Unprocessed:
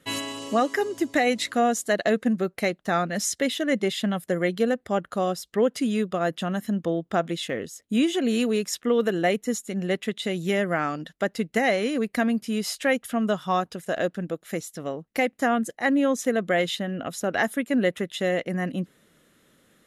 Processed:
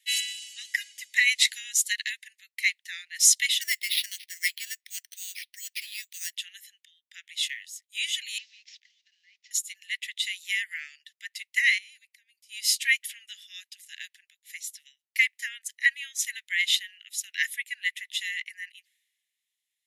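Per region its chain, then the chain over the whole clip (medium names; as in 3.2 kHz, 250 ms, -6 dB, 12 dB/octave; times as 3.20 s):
3.61–6.33 s: high-pass 520 Hz + sample-rate reducer 7.4 kHz
8.38–9.51 s: CVSD coder 32 kbps + high-pass 650 Hz 6 dB/octave + compression 10:1, threshold -40 dBFS
11.78–12.49 s: amplifier tone stack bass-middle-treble 10-0-10 + compression 16:1, threshold -47 dBFS
whole clip: steep high-pass 1.9 kHz 72 dB/octave; three bands expanded up and down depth 70%; trim +4 dB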